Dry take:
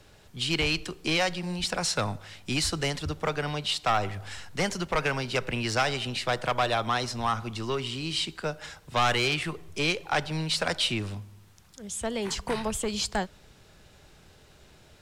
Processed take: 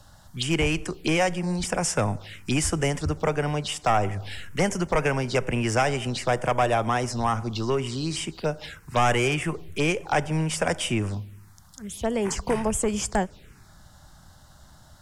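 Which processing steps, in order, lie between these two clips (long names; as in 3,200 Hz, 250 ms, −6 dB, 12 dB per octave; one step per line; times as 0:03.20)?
dynamic equaliser 1,300 Hz, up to −5 dB, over −40 dBFS, Q 1.8
phaser swept by the level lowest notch 360 Hz, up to 4,100 Hz, full sweep at −27.5 dBFS
level +6 dB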